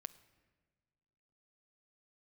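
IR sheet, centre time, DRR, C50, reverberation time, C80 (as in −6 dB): 3 ms, 14.0 dB, 17.5 dB, non-exponential decay, 19.0 dB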